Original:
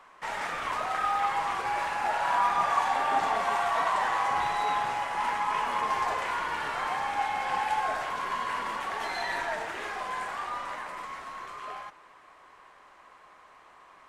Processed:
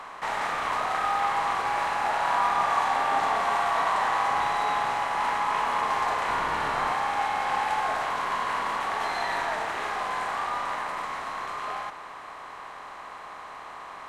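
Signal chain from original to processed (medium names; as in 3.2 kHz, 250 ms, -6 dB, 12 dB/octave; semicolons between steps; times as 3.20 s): spectral levelling over time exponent 0.6; 6.28–6.92 s: bass shelf 340 Hz +7.5 dB; trim -1.5 dB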